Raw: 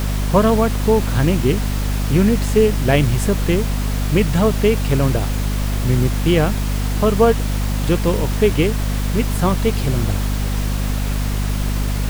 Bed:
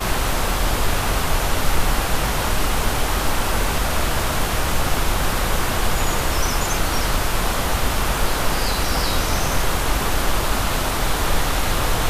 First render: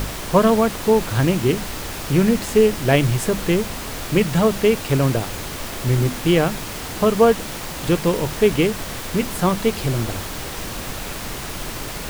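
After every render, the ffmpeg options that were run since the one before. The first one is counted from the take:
-af "bandreject=f=50:t=h:w=6,bandreject=f=100:t=h:w=6,bandreject=f=150:t=h:w=6,bandreject=f=200:t=h:w=6,bandreject=f=250:t=h:w=6"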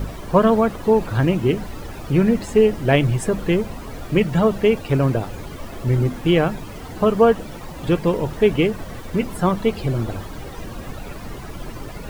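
-af "afftdn=nr=14:nf=-30"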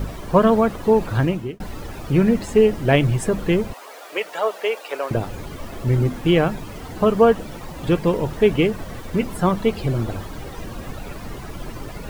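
-filter_complex "[0:a]asettb=1/sr,asplit=3[s0][s1][s2];[s0]atrim=end=3.734[s3];[s1]atrim=start=3.73:end=5.11,asetpts=PTS-STARTPTS,afade=t=in:d=0.004:c=qsin,afade=t=out:st=1.376:d=0.004:c=qsin,highpass=f=500:w=0.5412,highpass=f=500:w=1.3066[s4];[s2]atrim=start=5.106[s5];[s3][s4]acrossfade=d=0.004:c1=hsin:c2=qsin[s6];[s6][s5]acrossfade=d=0.004:c1=qsin:c2=hsin,asplit=2[s7][s8];[s7]atrim=end=1.6,asetpts=PTS-STARTPTS,afade=t=out:st=1.18:d=0.42[s9];[s8]atrim=start=1.6,asetpts=PTS-STARTPTS,afade=t=in:d=0.004:c=hsin[s10];[s9][s10]concat=n=2:v=0:a=1"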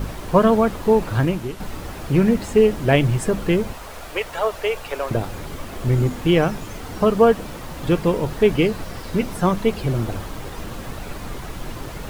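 -filter_complex "[1:a]volume=0.119[s0];[0:a][s0]amix=inputs=2:normalize=0"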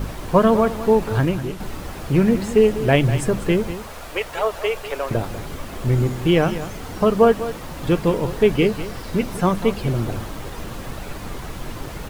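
-af "aecho=1:1:196:0.224"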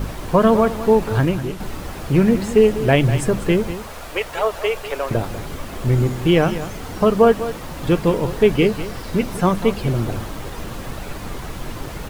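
-af "volume=1.19,alimiter=limit=0.708:level=0:latency=1"

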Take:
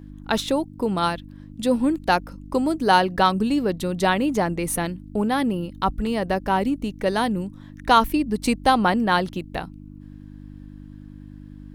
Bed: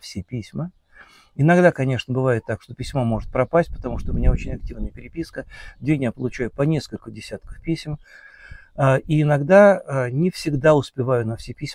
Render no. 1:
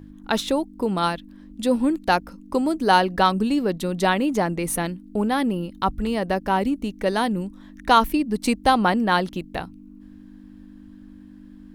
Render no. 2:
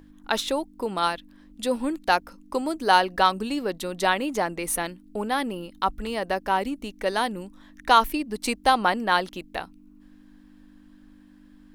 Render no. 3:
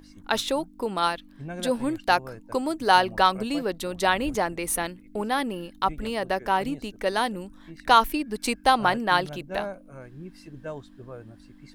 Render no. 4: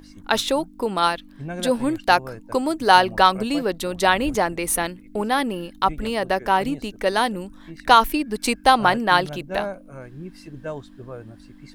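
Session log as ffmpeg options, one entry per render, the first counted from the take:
-af "bandreject=f=50:t=h:w=4,bandreject=f=100:t=h:w=4,bandreject=f=150:t=h:w=4"
-af "equalizer=f=110:w=0.48:g=-14.5"
-filter_complex "[1:a]volume=0.0841[s0];[0:a][s0]amix=inputs=2:normalize=0"
-af "volume=1.68,alimiter=limit=0.891:level=0:latency=1"

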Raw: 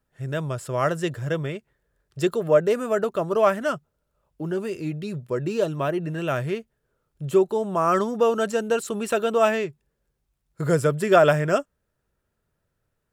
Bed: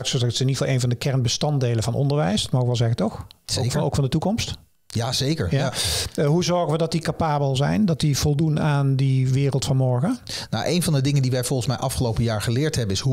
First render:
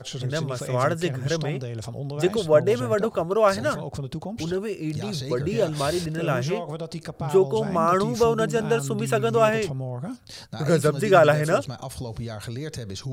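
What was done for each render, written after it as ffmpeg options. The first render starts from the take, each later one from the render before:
-filter_complex "[1:a]volume=0.282[s0];[0:a][s0]amix=inputs=2:normalize=0"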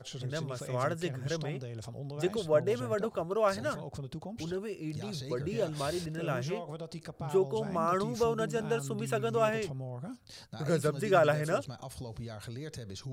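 -af "volume=0.355"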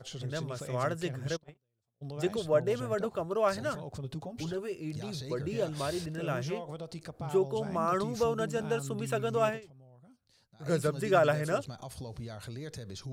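-filter_complex "[0:a]asplit=3[s0][s1][s2];[s0]afade=t=out:st=1.35:d=0.02[s3];[s1]agate=range=0.00794:threshold=0.0224:ratio=16:release=100:detection=peak,afade=t=in:st=1.35:d=0.02,afade=t=out:st=2.01:d=0.02[s4];[s2]afade=t=in:st=2.01:d=0.02[s5];[s3][s4][s5]amix=inputs=3:normalize=0,asettb=1/sr,asplit=3[s6][s7][s8];[s6]atrim=end=4.034[s9];[s7]atrim=start=4.03:end=4.72,asetpts=PTS-STARTPTS,afade=t=in:d=0.004:c=qsin,afade=t=out:st=0.686:d=0.004:c=qsin,aecho=1:1:7.2:0.58,atrim=end_sample=30429[s10];[s8]atrim=start=4.716[s11];[s9][s10]acrossfade=d=0.004:c1=hsin:c2=qsin[s12];[s12][s11]acrossfade=d=0.004:c1=qsin:c2=hsin,asplit=3[s13][s14][s15];[s13]atrim=end=9.61,asetpts=PTS-STARTPTS,afade=t=out:st=9.48:d=0.13:silence=0.141254[s16];[s14]atrim=start=9.61:end=10.59,asetpts=PTS-STARTPTS,volume=0.141[s17];[s15]atrim=start=10.59,asetpts=PTS-STARTPTS,afade=t=in:d=0.13:silence=0.141254[s18];[s16][s17][s18]concat=n=3:v=0:a=1"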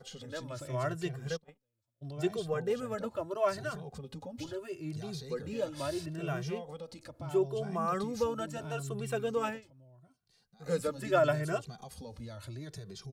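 -filter_complex "[0:a]asplit=2[s0][s1];[s1]adelay=2.1,afreqshift=0.76[s2];[s0][s2]amix=inputs=2:normalize=1"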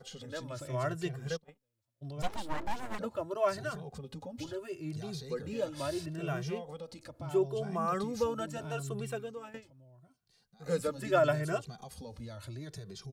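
-filter_complex "[0:a]asettb=1/sr,asplit=3[s0][s1][s2];[s0]atrim=end=2.224[s3];[s1]atrim=start=2.22:end=2.99,asetpts=PTS-STARTPTS,afade=t=in:d=0.004:c=qsin,afade=t=out:st=0.766:d=0.004:c=qsin,aeval=exprs='abs(val(0))':c=same[s4];[s2]atrim=start=2.986[s5];[s3][s4]acrossfade=d=0.004:c1=hsin:c2=qsin[s6];[s6][s5]acrossfade=d=0.004:c1=qsin:c2=hsin,asplit=2[s7][s8];[s7]atrim=end=9.54,asetpts=PTS-STARTPTS,afade=t=out:st=9.01:d=0.53:c=qua:silence=0.16788[s9];[s8]atrim=start=9.54,asetpts=PTS-STARTPTS,afade=t=in:d=0.004:c=hsin:silence=0.16788[s10];[s9][s10]concat=n=2:v=0:a=1"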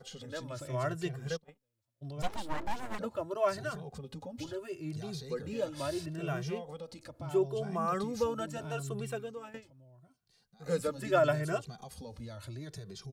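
-af anull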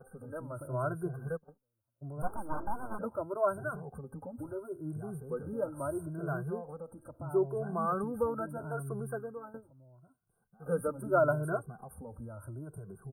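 -af "afftfilt=real='re*(1-between(b*sr/4096,1600,8500))':imag='im*(1-between(b*sr/4096,1600,8500))':win_size=4096:overlap=0.75,adynamicequalizer=threshold=0.00158:dfrequency=1900:dqfactor=2.2:tfrequency=1900:tqfactor=2.2:attack=5:release=100:ratio=0.375:range=2:mode=boostabove:tftype=bell"

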